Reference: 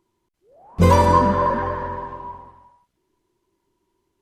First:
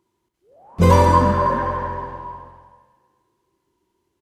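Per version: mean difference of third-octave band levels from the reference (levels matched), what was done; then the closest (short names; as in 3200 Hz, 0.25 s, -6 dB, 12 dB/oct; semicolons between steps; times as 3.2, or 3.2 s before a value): 1.5 dB: HPF 43 Hz; on a send: feedback echo 69 ms, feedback 54%, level -10 dB; on the sum: Schroeder reverb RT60 2 s, combs from 26 ms, DRR 13 dB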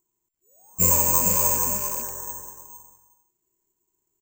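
11.0 dB: rattling part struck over -26 dBFS, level -17 dBFS; on a send: echo 0.454 s -4 dB; on the sum: careless resampling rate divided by 6×, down filtered, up zero stuff; gain -13.5 dB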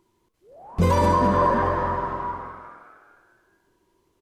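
4.5 dB: in parallel at -0.5 dB: compressor, threshold -27 dBFS, peak gain reduction 16.5 dB; on the sum: limiter -9.5 dBFS, peak gain reduction 7 dB; frequency-shifting echo 0.209 s, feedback 54%, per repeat +110 Hz, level -13 dB; gain -1.5 dB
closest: first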